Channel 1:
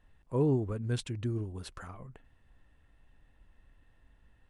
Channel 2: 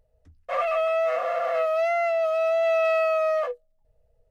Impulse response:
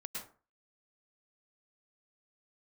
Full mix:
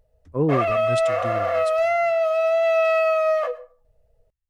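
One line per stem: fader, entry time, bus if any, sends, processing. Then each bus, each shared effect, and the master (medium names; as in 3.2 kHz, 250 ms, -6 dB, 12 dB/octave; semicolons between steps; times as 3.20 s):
-2.0 dB, 0.00 s, no send, vibrato 0.54 Hz 63 cents; three bands expanded up and down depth 100%
+2.0 dB, 0.00 s, send -13.5 dB, none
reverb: on, RT60 0.40 s, pre-delay 98 ms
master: none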